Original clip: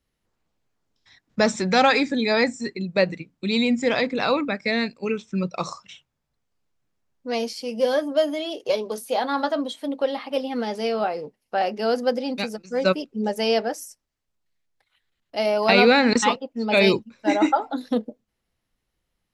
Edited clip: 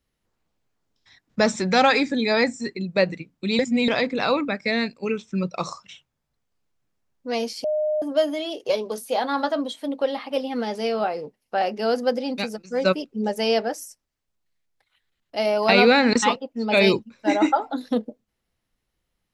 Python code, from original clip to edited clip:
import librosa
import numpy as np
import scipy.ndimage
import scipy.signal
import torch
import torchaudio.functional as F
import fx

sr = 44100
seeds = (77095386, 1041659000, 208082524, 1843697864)

y = fx.edit(x, sr, fx.reverse_span(start_s=3.59, length_s=0.29),
    fx.bleep(start_s=7.64, length_s=0.38, hz=611.0, db=-20.0), tone=tone)